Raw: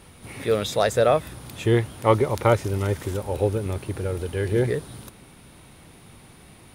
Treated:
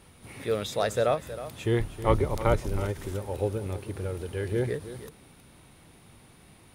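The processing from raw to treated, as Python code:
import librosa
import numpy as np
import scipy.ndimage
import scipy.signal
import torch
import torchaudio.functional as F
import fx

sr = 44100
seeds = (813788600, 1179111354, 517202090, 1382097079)

p1 = fx.octave_divider(x, sr, octaves=2, level_db=2.0, at=(1.79, 2.8))
p2 = p1 + fx.echo_single(p1, sr, ms=317, db=-13.5, dry=0)
p3 = fx.end_taper(p2, sr, db_per_s=280.0)
y = F.gain(torch.from_numpy(p3), -6.0).numpy()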